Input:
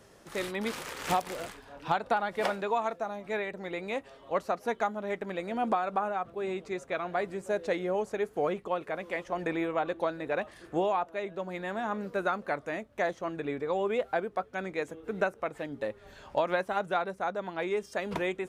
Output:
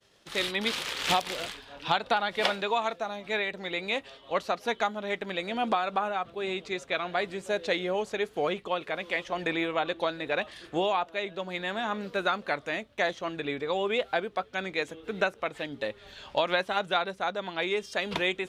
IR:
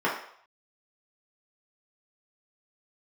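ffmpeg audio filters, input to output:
-af "agate=range=0.0224:threshold=0.00355:ratio=3:detection=peak,equalizer=f=3500:t=o:w=1.4:g=13.5"

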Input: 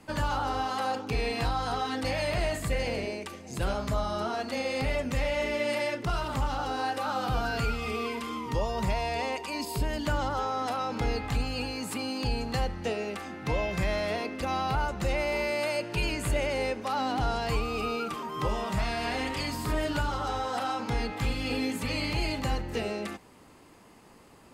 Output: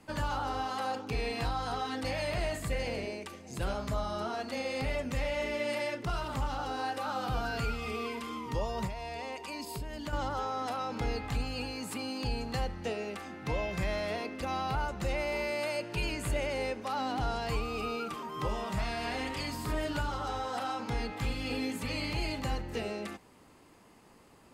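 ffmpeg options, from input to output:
-filter_complex "[0:a]asettb=1/sr,asplit=3[s0][s1][s2];[s0]atrim=end=8.864[s3];[s1]atrim=start=8.86:end=10.13,asetpts=PTS-STARTPTS,afade=t=in:d=0.004:c=qsin,afade=t=out:st=1.266:d=0.004:c=qsin,acompressor=threshold=0.0251:ratio=5[s4];[s2]atrim=start=10.126[s5];[s3][s4]acrossfade=d=0.004:c1=hsin:c2=qsin[s6];[s6][s5]acrossfade=d=0.004:c1=qsin:c2=hsin,volume=0.631"

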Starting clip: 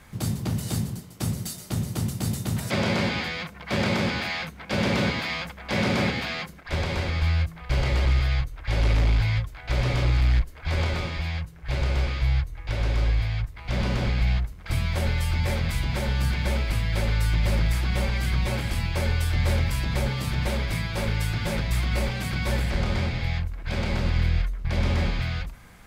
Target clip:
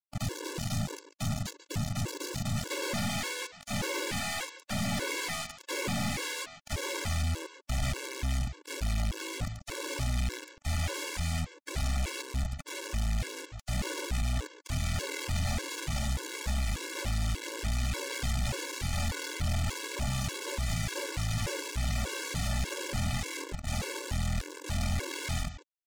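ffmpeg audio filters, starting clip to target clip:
-filter_complex "[0:a]aresample=16000,acrusher=bits=4:mix=0:aa=0.000001,aresample=44100,asplit=2[s0][s1];[s1]adelay=139.9,volume=0.0891,highshelf=f=4000:g=-3.15[s2];[s0][s2]amix=inputs=2:normalize=0,aeval=exprs='(tanh(56.2*val(0)+0.35)-tanh(0.35))/56.2':c=same,afftfilt=real='re*gt(sin(2*PI*1.7*pts/sr)*(1-2*mod(floor(b*sr/1024/290),2)),0)':imag='im*gt(sin(2*PI*1.7*pts/sr)*(1-2*mod(floor(b*sr/1024/290),2)),0)':win_size=1024:overlap=0.75,volume=2.37"

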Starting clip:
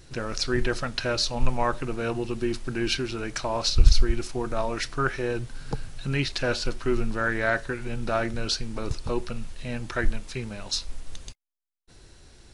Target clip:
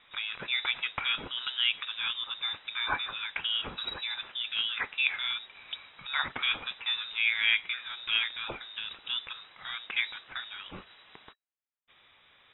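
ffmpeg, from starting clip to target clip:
-af "highpass=f=680:p=1,equalizer=f=2200:t=o:w=0.77:g=2.5,lowpass=f=3300:t=q:w=0.5098,lowpass=f=3300:t=q:w=0.6013,lowpass=f=3300:t=q:w=0.9,lowpass=f=3300:t=q:w=2.563,afreqshift=-3900"

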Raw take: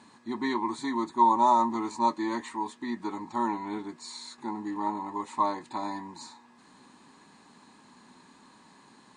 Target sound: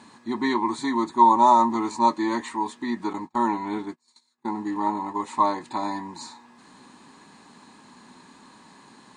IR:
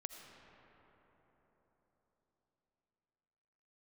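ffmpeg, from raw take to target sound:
-filter_complex "[0:a]asettb=1/sr,asplit=3[s0][s1][s2];[s0]atrim=end=3.134[s3];[s1]atrim=start=3.13:end=5.19,asetpts=PTS-STARTPTS,afade=t=in:d=0.004:c=qsin,afade=t=out:st=2.056:d=0.004:c=qsin,agate=range=0.0251:threshold=0.0126:ratio=16:detection=peak[s4];[s2]atrim=start=5.186[s5];[s3][s4]acrossfade=d=0.004:c1=hsin:c2=qsin[s6];[s6][s5]acrossfade=d=0.004:c1=qsin:c2=hsin,volume=1.88"

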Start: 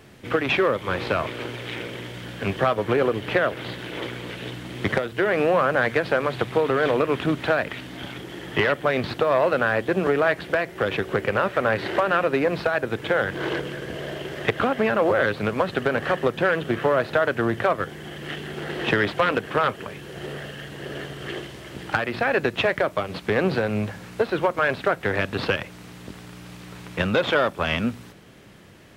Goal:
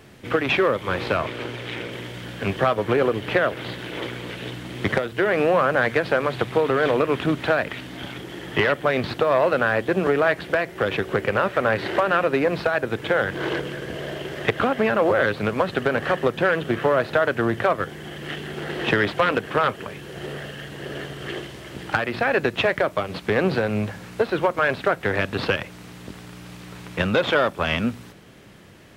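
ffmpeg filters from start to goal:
-filter_complex "[0:a]asettb=1/sr,asplit=3[s0][s1][s2];[s0]atrim=end=1.174[s3];[s1]atrim=start=1.17:end=1.92,asetpts=PTS-STARTPTS,afade=t=in:d=0.004:c=qsin,afade=t=out:st=0.746:d=0.004:c=qsin,highshelf=f=9200:g=-5.5[s4];[s2]atrim=start=1.916[s5];[s3][s4]acrossfade=d=0.004:c1=hsin:c2=qsin[s6];[s6][s5]acrossfade=d=0.004:c1=qsin:c2=hsin,volume=1.12"

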